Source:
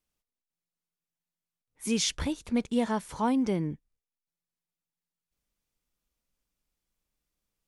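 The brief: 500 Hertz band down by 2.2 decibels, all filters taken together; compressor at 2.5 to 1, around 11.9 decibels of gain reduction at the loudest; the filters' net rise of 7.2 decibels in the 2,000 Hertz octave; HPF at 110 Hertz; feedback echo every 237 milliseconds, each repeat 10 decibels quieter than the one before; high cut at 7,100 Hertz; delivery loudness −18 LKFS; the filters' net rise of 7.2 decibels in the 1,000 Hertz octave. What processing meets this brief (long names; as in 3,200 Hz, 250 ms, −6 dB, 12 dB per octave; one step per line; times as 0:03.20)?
high-pass filter 110 Hz
low-pass filter 7,100 Hz
parametric band 500 Hz −5 dB
parametric band 1,000 Hz +8.5 dB
parametric band 2,000 Hz +7 dB
downward compressor 2.5 to 1, threshold −36 dBFS
repeating echo 237 ms, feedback 32%, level −10 dB
level +18.5 dB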